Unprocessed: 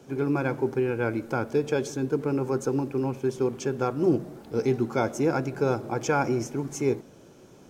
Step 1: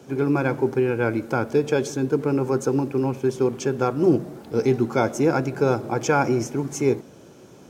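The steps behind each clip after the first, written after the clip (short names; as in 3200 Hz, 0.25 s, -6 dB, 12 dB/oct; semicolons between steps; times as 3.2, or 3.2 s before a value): HPF 57 Hz; gain +4.5 dB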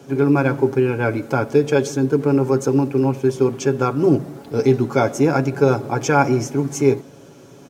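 comb 7.2 ms, depth 50%; gain +2.5 dB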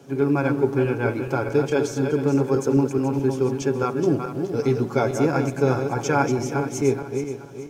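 regenerating reverse delay 0.213 s, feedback 58%, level -6.5 dB; gain -5 dB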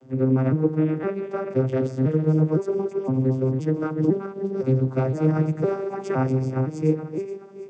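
arpeggiated vocoder minor triad, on C3, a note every 0.512 s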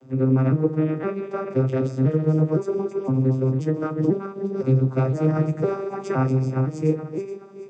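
resonator 69 Hz, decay 0.17 s, harmonics all, mix 70%; gain +5 dB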